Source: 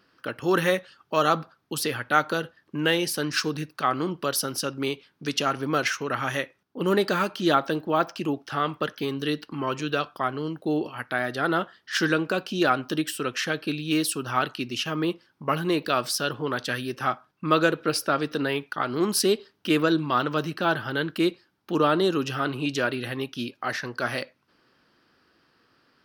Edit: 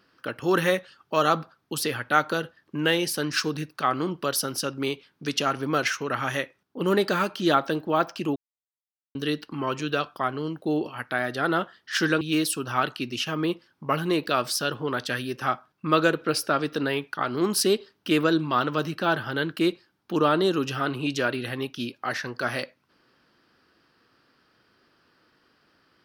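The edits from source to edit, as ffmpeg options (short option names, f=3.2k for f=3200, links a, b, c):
-filter_complex "[0:a]asplit=4[a][b][c][d];[a]atrim=end=8.36,asetpts=PTS-STARTPTS,afade=t=out:st=8.356:d=0.004:c=hsin[e];[b]atrim=start=8.36:end=9.15,asetpts=PTS-STARTPTS,volume=0[f];[c]atrim=start=9.15:end=12.212,asetpts=PTS-STARTPTS,afade=t=in:d=0.004:c=hsin[g];[d]atrim=start=13.798[h];[e][f][g]concat=n=3:v=0:a=1[i];[i][h]acrossfade=d=0.004:c1=hsin:c2=hsin"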